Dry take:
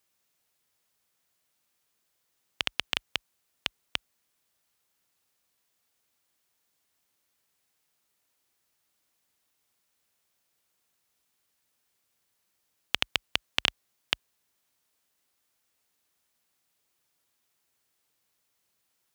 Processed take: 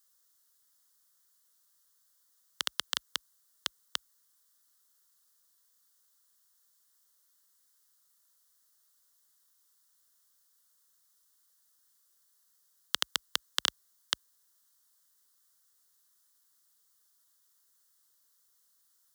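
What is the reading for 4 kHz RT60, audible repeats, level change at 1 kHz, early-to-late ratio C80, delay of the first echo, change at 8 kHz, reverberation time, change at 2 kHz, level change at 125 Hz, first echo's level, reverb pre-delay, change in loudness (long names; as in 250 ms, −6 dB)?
no reverb audible, no echo audible, −1.5 dB, no reverb audible, no echo audible, +6.0 dB, no reverb audible, −6.5 dB, below −10 dB, no echo audible, no reverb audible, −2.5 dB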